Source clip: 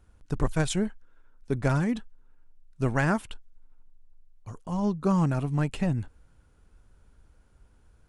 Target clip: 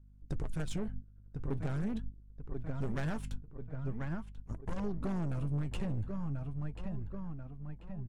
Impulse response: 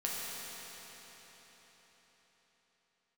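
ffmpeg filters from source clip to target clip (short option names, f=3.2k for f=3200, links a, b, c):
-filter_complex "[0:a]aeval=exprs='if(lt(val(0),0),0.447*val(0),val(0))':c=same,asettb=1/sr,asplit=3[a][b][c];[a]atrim=end=0.634[d];[b]atrim=start=0.63:end=1.74,asetpts=PTS-STARTPTS,afade=t=in:d=0.004:c=qsin,afade=t=out:st=1.106:d=0.004:c=qsin,highshelf=f=5.8k:g=-5.5[e];[c]atrim=start=1.736[f];[d][e]acrossfade=d=0.004:c1=hsin:c2=qsin[g];[g][f]acrossfade=d=0.004:c1=qsin:c2=hsin,asettb=1/sr,asplit=3[h][i][j];[h]atrim=end=3.254[k];[i]atrim=start=3.25:end=4.8,asetpts=PTS-STARTPTS,afade=t=in:d=0.004:c=qsin,afade=t=out:st=1.546:d=0.004:c=qsin,aeval=exprs='0.1*(cos(1*acos(clip(val(0)/0.1,-1,1)))-cos(1*PI/2))+0.0251*(cos(8*acos(clip(val(0)/0.1,-1,1)))-cos(8*PI/2))':c=same[l];[j]atrim=start=4.796[m];[k][l]acrossfade=d=0.004:c1=hsin:c2=qsin[n];[n][m]acrossfade=d=0.004:c1=qsin:c2=hsin,aeval=exprs='val(0)+0.00794*(sin(2*PI*50*n/s)+sin(2*PI*2*50*n/s)/2+sin(2*PI*3*50*n/s)/3+sin(2*PI*4*50*n/s)/4+sin(2*PI*5*50*n/s)/5)':c=same,agate=range=-22dB:threshold=-39dB:ratio=16:detection=peak,lowshelf=f=340:g=8.5,asplit=2[o][p];[p]adelay=1038,lowpass=f=2.8k:p=1,volume=-13dB,asplit=2[q][r];[r]adelay=1038,lowpass=f=2.8k:p=1,volume=0.43,asplit=2[s][t];[t]adelay=1038,lowpass=f=2.8k:p=1,volume=0.43,asplit=2[u][v];[v]adelay=1038,lowpass=f=2.8k:p=1,volume=0.43[w];[o][q][s][u][w]amix=inputs=5:normalize=0,asoftclip=type=tanh:threshold=-23.5dB,flanger=delay=1.7:depth=7.8:regen=65:speed=0.42:shape=triangular,acompressor=threshold=-36dB:ratio=6,volume=4dB"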